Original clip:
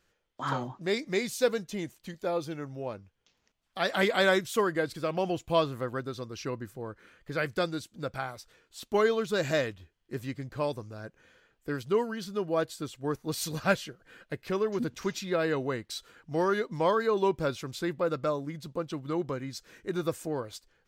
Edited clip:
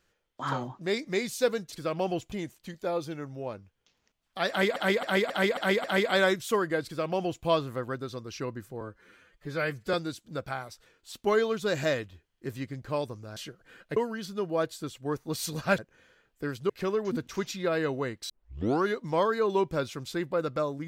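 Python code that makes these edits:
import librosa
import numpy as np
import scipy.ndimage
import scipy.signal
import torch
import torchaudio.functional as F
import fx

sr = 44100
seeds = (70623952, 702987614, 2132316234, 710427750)

y = fx.edit(x, sr, fx.repeat(start_s=3.89, length_s=0.27, count=6),
    fx.duplicate(start_s=4.9, length_s=0.6, to_s=1.72),
    fx.stretch_span(start_s=6.86, length_s=0.75, factor=1.5),
    fx.swap(start_s=11.04, length_s=0.91, other_s=13.77, other_length_s=0.6),
    fx.tape_start(start_s=15.97, length_s=0.55), tone=tone)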